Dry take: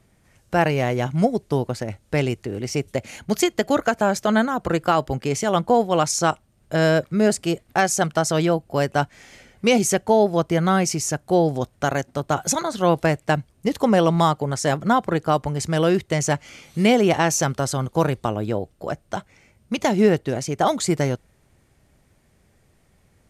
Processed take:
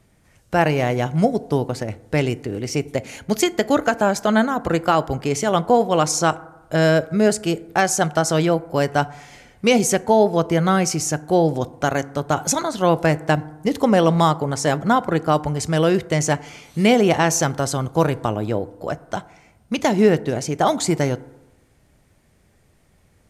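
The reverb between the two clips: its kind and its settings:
feedback delay network reverb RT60 1 s, low-frequency decay 0.95×, high-frequency decay 0.35×, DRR 16 dB
level +1.5 dB

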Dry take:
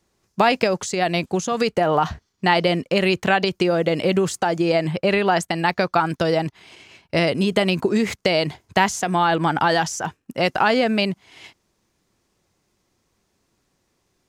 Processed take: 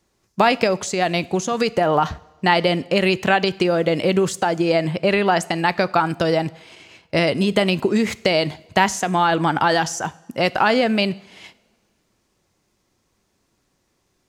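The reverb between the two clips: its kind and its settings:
coupled-rooms reverb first 0.66 s, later 2 s, from −16 dB, DRR 17.5 dB
level +1 dB

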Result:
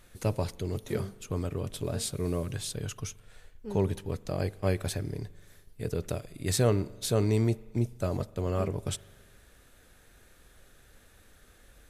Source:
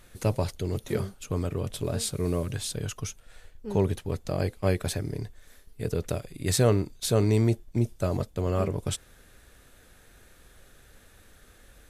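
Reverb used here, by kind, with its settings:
spring reverb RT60 1.5 s, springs 41 ms, chirp 70 ms, DRR 20 dB
level −3 dB

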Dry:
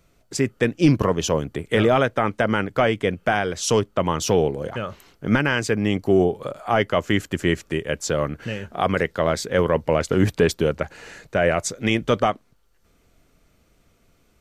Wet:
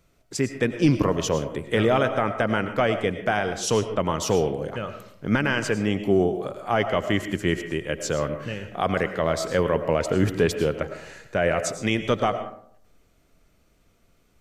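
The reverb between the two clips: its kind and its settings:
comb and all-pass reverb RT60 0.64 s, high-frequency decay 0.45×, pre-delay 65 ms, DRR 9 dB
level −3 dB

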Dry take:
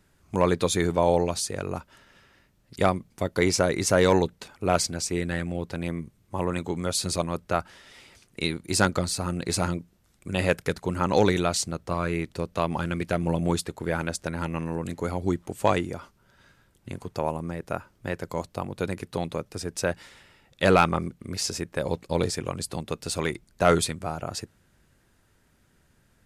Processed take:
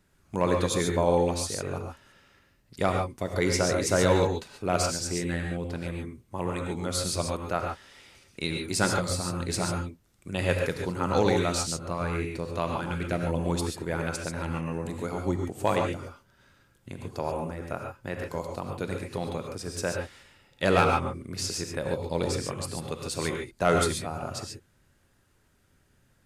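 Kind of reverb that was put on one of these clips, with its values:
reverb whose tail is shaped and stops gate 160 ms rising, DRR 2 dB
level −4 dB

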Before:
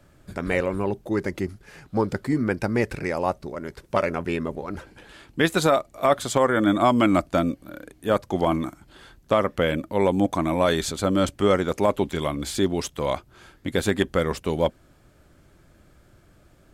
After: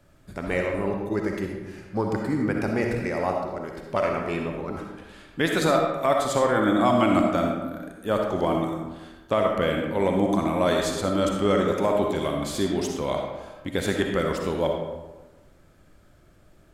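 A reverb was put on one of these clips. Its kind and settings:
comb and all-pass reverb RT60 1.2 s, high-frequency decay 0.55×, pre-delay 20 ms, DRR 1 dB
level −3.5 dB

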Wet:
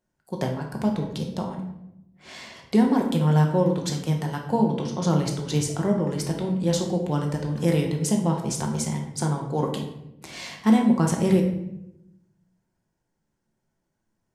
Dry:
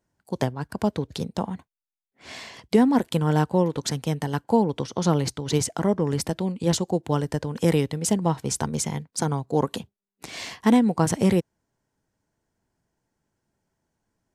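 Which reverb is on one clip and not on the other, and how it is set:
rectangular room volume 250 cubic metres, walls mixed, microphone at 0.97 metres
level −4 dB

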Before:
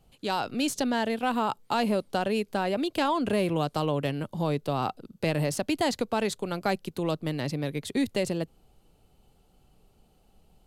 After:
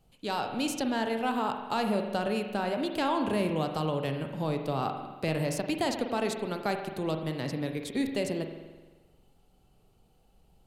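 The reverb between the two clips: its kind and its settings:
spring reverb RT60 1.3 s, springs 44 ms, chirp 40 ms, DRR 5 dB
level −3.5 dB

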